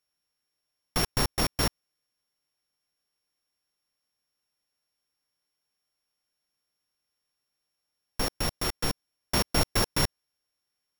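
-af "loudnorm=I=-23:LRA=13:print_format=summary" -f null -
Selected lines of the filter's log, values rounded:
Input Integrated:    -28.5 LUFS
Input True Peak:      -9.1 dBTP
Input LRA:             3.6 LU
Input Threshold:     -38.8 LUFS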